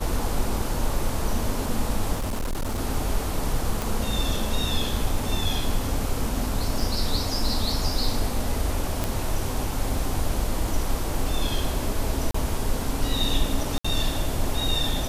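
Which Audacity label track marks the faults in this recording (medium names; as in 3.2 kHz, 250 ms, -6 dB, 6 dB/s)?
2.140000	2.790000	clipped -23.5 dBFS
3.820000	3.820000	pop
6.800000	6.800000	dropout 3.6 ms
9.040000	9.040000	pop
12.310000	12.340000	dropout 34 ms
13.780000	13.850000	dropout 65 ms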